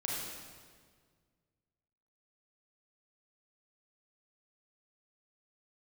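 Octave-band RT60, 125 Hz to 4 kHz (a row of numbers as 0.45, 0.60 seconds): 2.5, 2.1, 1.9, 1.6, 1.5, 1.4 seconds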